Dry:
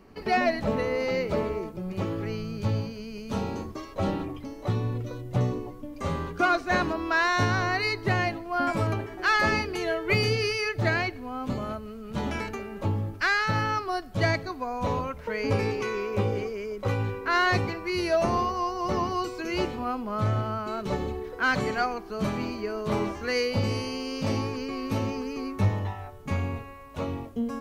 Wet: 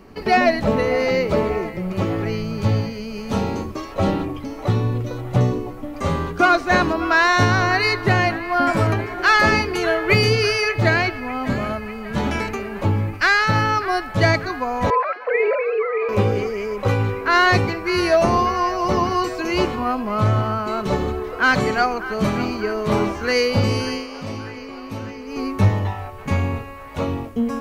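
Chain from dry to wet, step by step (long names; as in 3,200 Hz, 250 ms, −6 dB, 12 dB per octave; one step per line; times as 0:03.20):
0:14.90–0:16.09: three sine waves on the formant tracks
0:23.93–0:25.40: duck −10.5 dB, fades 0.14 s
delay with a band-pass on its return 595 ms, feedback 65%, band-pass 1,400 Hz, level −14 dB
level +8 dB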